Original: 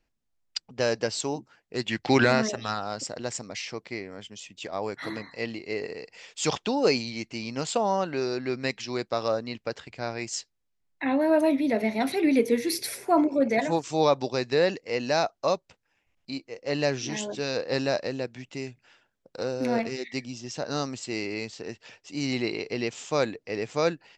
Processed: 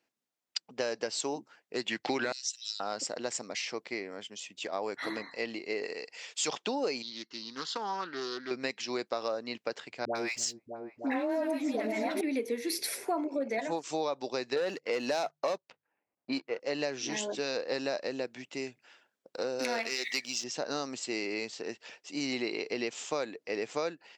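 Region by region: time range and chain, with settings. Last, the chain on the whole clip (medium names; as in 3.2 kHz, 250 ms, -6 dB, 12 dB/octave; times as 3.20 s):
2.32–2.80 s: inverse Chebyshev high-pass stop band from 650 Hz, stop band 80 dB + treble shelf 6 kHz +11 dB
5.83–6.48 s: low-pass 10 kHz + tilt EQ +1.5 dB/octave
7.02–8.51 s: high-pass 460 Hz 6 dB/octave + static phaser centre 2.4 kHz, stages 6 + loudspeaker Doppler distortion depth 0.21 ms
10.05–12.21 s: waveshaping leveller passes 1 + phase dispersion highs, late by 101 ms, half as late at 690 Hz + delay with an opening low-pass 305 ms, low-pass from 200 Hz, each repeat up 2 oct, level -6 dB
14.56–16.60 s: hum notches 50/100/150 Hz + waveshaping leveller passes 2 + level-controlled noise filter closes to 970 Hz, open at -18.5 dBFS
19.59–20.44 s: tilt shelf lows -8.5 dB, about 840 Hz + waveshaping leveller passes 1
whole clip: high-pass 270 Hz 12 dB/octave; compression, threshold -29 dBFS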